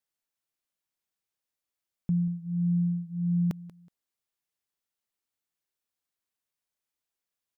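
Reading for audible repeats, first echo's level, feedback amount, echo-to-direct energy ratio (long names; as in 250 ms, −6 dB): 2, −18.0 dB, 24%, −17.5 dB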